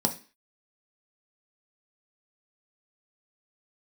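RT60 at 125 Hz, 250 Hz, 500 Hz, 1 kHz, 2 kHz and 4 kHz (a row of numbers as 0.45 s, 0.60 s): 0.30 s, 0.40 s, 0.35 s, 0.35 s, 0.45 s, 0.40 s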